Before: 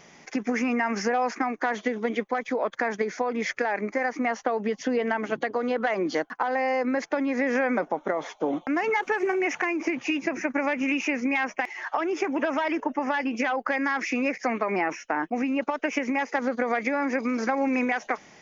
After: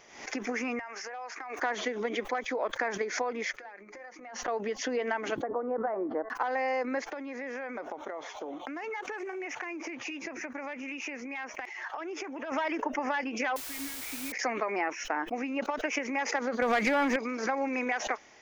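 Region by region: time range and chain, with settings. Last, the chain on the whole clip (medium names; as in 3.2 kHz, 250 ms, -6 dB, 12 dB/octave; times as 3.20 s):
0.79–1.59 s: high-pass 570 Hz + compression 10:1, threshold -32 dBFS
3.56–4.48 s: compression 10:1, threshold -39 dBFS + hum notches 60/120/180/240/300/360/420/480/540 Hz + comb 5.6 ms, depth 53%
5.42–6.30 s: low-pass 1.2 kHz 24 dB/octave + de-hum 220.2 Hz, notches 9
7.10–12.52 s: compression, threshold -29 dBFS + high-pass 49 Hz
13.56–14.32 s: vowel filter i + bass shelf 320 Hz -5 dB + word length cut 6-bit, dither triangular
16.62–17.16 s: resonant low shelf 240 Hz +6.5 dB, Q 1.5 + waveshaping leveller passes 2
whole clip: peaking EQ 170 Hz -14.5 dB 0.83 oct; swell ahead of each attack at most 87 dB/s; trim -4 dB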